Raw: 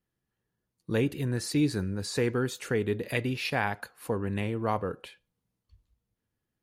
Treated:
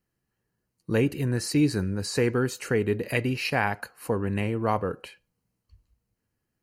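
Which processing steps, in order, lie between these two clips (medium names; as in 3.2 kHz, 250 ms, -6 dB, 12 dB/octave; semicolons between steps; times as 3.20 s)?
Butterworth band-stop 3.5 kHz, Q 5.6; trim +3.5 dB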